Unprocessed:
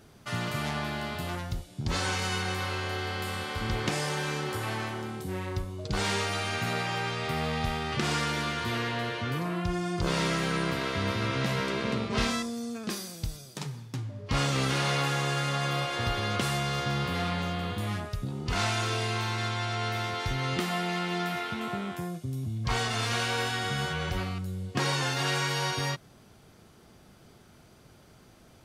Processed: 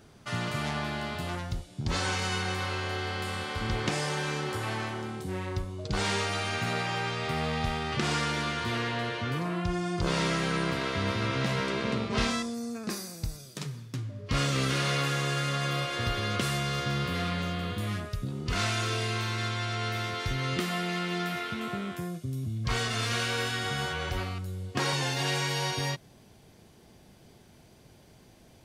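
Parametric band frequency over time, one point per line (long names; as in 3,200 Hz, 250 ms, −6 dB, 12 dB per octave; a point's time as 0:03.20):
parametric band −10.5 dB 0.32 octaves
13,000 Hz
from 0:12.54 3,200 Hz
from 0:13.40 840 Hz
from 0:23.66 170 Hz
from 0:24.93 1,300 Hz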